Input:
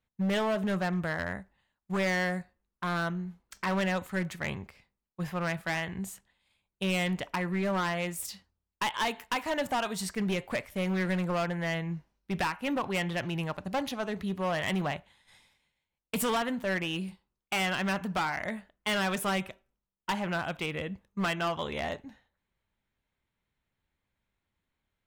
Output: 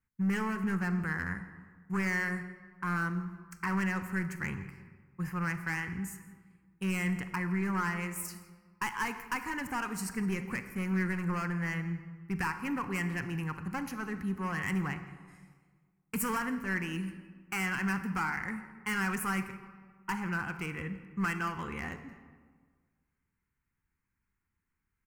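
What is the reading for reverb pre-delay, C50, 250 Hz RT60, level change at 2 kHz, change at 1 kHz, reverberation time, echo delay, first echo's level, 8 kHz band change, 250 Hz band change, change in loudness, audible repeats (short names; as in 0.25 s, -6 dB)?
35 ms, 10.5 dB, 1.8 s, -1.0 dB, -3.5 dB, 1.6 s, 0.166 s, -21.0 dB, -2.0 dB, -0.5 dB, -2.5 dB, 1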